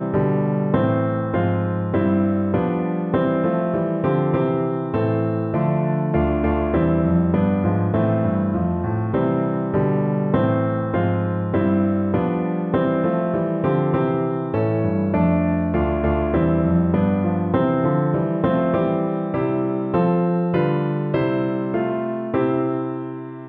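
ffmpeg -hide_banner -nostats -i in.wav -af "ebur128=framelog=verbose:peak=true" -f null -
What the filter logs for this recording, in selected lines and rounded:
Integrated loudness:
  I:         -20.5 LUFS
  Threshold: -30.6 LUFS
Loudness range:
  LRA:         1.4 LU
  Threshold: -40.4 LUFS
  LRA low:   -21.0 LUFS
  LRA high:  -19.6 LUFS
True peak:
  Peak:       -5.0 dBFS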